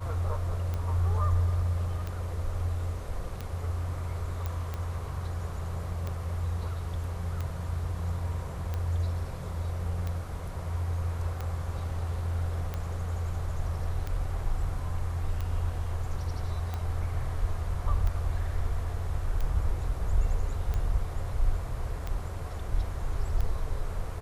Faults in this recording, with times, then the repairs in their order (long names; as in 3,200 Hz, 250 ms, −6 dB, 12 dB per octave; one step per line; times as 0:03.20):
scratch tick 45 rpm −21 dBFS
0:04.46: click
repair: click removal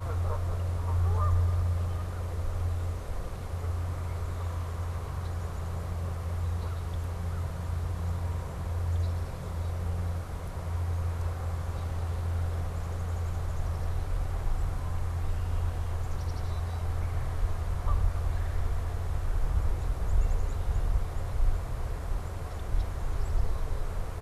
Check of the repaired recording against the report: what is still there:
none of them is left